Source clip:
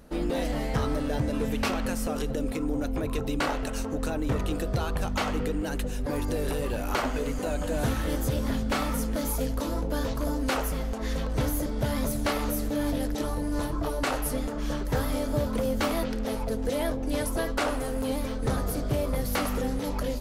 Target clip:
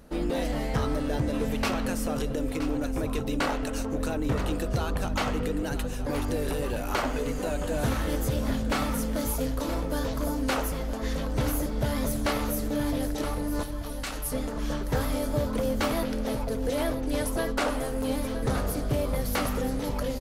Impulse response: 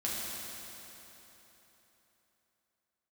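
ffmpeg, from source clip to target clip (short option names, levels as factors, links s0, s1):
-filter_complex "[0:a]asettb=1/sr,asplit=3[s0][s1][s2];[s0]atrim=end=13.634[s3];[s1]atrim=start=13.63:end=14.32,asetpts=PTS-STARTPTS,afade=t=in:d=0.004:c=qsin,afade=t=out:st=0.686:d=0.004:c=qsin,equalizer=f=460:w=0.3:g=-13[s4];[s2]atrim=start=14.316[s5];[s3][s4]acrossfade=d=0.004:c1=hsin:c2=qsin[s6];[s6][s5]acrossfade=d=0.004:c1=qsin:c2=hsin,aecho=1:1:971:0.266"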